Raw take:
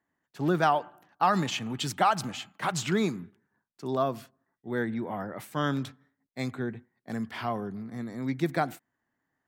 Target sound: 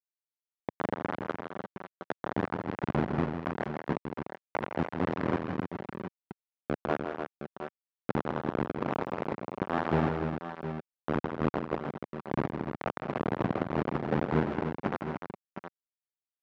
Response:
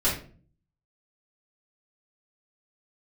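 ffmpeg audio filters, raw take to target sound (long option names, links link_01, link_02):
-filter_complex "[0:a]aemphasis=mode=reproduction:type=riaa,afftdn=noise_reduction=23:noise_floor=-34,equalizer=frequency=1200:width_type=o:width=2.1:gain=6,acompressor=threshold=-27dB:ratio=16,alimiter=level_in=3.5dB:limit=-24dB:level=0:latency=1:release=230,volume=-3.5dB,dynaudnorm=framelen=120:gausssize=3:maxgain=12dB,tremolo=f=140:d=0.71,flanger=delay=0.7:depth=6.2:regen=-58:speed=0.53:shape=sinusoidal,acrusher=bits=3:mix=0:aa=0.000001,highpass=250,lowpass=2900,asplit=2[link_01][link_02];[link_02]aecho=0:1:92|120|171|412|415:0.422|0.224|0.447|0.316|0.119[link_03];[link_01][link_03]amix=inputs=2:normalize=0,asetrate=25442,aresample=44100,volume=1.5dB"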